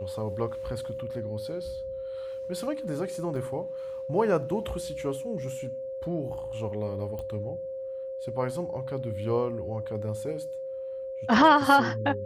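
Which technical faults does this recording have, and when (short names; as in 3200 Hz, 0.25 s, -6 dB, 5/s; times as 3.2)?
tone 530 Hz -33 dBFS
3.36 gap 2.7 ms
7.19 pop -25 dBFS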